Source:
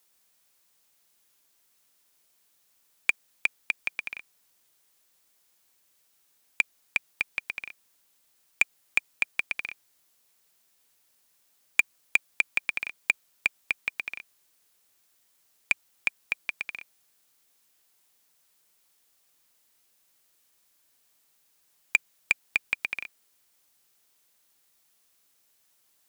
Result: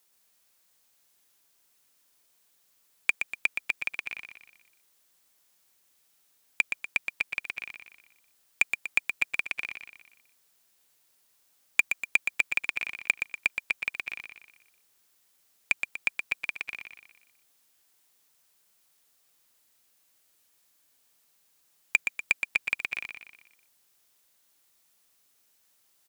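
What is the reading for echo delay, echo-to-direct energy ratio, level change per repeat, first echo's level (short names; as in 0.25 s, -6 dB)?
0.121 s, -6.0 dB, -6.5 dB, -7.0 dB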